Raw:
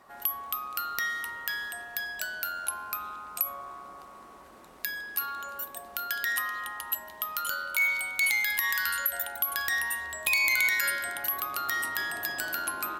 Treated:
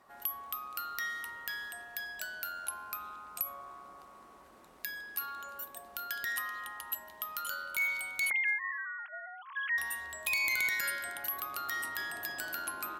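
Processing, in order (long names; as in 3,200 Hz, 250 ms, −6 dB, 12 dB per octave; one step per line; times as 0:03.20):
0:08.30–0:09.78: three sine waves on the formant tracks
asymmetric clip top −18 dBFS
level −6 dB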